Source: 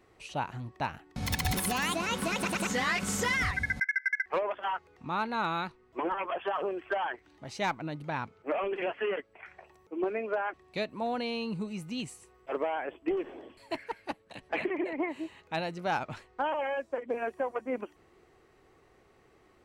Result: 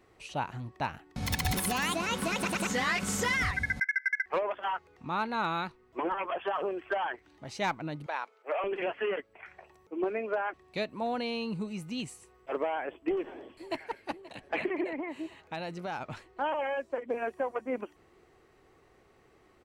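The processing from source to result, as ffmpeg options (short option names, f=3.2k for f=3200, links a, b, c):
-filter_complex "[0:a]asettb=1/sr,asplit=3[a][b][c];[a]atrim=end=8.064[d];[b]atrim=start=8.06:end=8.64,asetpts=PTS-STARTPTS,afade=t=in:d=0.004:c=qsin,afade=t=out:st=0.576:d=0.004:c=qsin,highpass=f=460:w=0.5412,highpass=f=460:w=1.3066[e];[c]atrim=start=8.636[f];[d][e]acrossfade=d=0.004:c1=hsin:c2=qsin[g];[g][f]acrossfade=d=0.004:c1=qsin:c2=hsin,asplit=2[h][i];[i]afade=t=in:st=12.74:d=0.01,afade=t=out:st=13.76:d=0.01,aecho=0:1:530|1060|1590|2120|2650|3180|3710:0.133352|0.0866789|0.0563413|0.0366218|0.0238042|0.0154727|0.0100573[j];[h][j]amix=inputs=2:normalize=0,asplit=3[k][l][m];[k]afade=t=out:st=14.97:d=0.02[n];[l]acompressor=threshold=-32dB:ratio=6:attack=3.2:release=140:knee=1:detection=peak,afade=t=in:st=14.97:d=0.02,afade=t=out:st=16.4:d=0.02[o];[m]afade=t=in:st=16.4:d=0.02[p];[n][o][p]amix=inputs=3:normalize=0"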